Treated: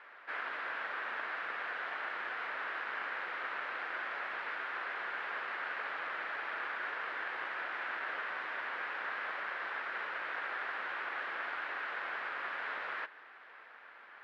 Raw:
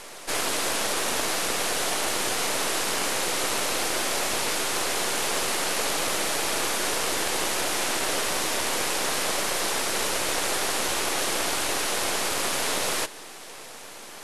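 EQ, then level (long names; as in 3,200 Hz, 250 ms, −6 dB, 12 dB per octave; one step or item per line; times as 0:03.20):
resonant band-pass 1,600 Hz, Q 2.7
high-frequency loss of the air 400 metres
0.0 dB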